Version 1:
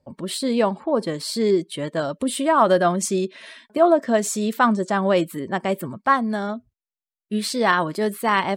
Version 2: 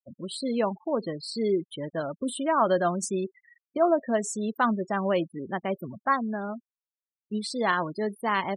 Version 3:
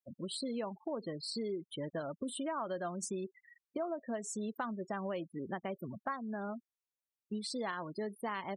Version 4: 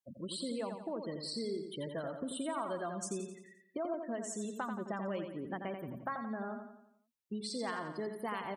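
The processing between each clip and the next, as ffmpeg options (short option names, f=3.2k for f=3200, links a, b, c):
-af "afftfilt=real='re*gte(hypot(re,im),0.0447)':imag='im*gte(hypot(re,im),0.0447)':win_size=1024:overlap=0.75,volume=-6.5dB"
-af "acompressor=threshold=-32dB:ratio=6,volume=-3.5dB"
-af "aecho=1:1:87|174|261|348|435|522:0.473|0.227|0.109|0.0523|0.0251|0.0121,volume=-1dB"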